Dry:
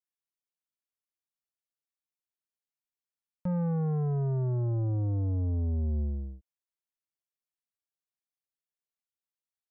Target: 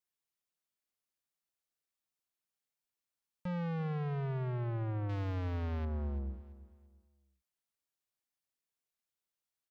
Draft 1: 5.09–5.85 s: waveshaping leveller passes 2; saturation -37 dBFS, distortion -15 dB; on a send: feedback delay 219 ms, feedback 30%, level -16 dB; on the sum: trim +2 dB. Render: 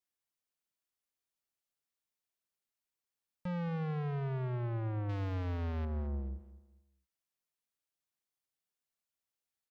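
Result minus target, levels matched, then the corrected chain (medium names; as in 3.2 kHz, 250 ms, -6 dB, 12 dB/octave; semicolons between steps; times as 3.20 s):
echo 119 ms early
5.09–5.85 s: waveshaping leveller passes 2; saturation -37 dBFS, distortion -15 dB; on a send: feedback delay 338 ms, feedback 30%, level -16 dB; on the sum: trim +2 dB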